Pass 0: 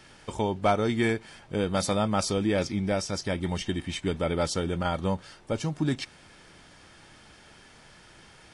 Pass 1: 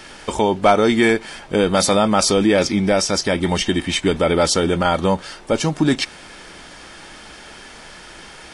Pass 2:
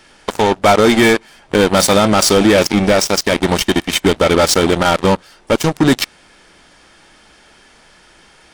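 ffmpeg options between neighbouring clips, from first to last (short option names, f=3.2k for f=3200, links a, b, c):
-filter_complex "[0:a]equalizer=f=110:t=o:w=1.1:g=-11.5,asplit=2[a][b];[b]alimiter=limit=-22.5dB:level=0:latency=1:release=31,volume=2dB[c];[a][c]amix=inputs=2:normalize=0,volume=7dB"
-af "apsyclip=9.5dB,aeval=exprs='1.06*(cos(1*acos(clip(val(0)/1.06,-1,1)))-cos(1*PI/2))+0.119*(cos(3*acos(clip(val(0)/1.06,-1,1)))-cos(3*PI/2))+0.133*(cos(7*acos(clip(val(0)/1.06,-1,1)))-cos(7*PI/2))':c=same,volume=-3dB"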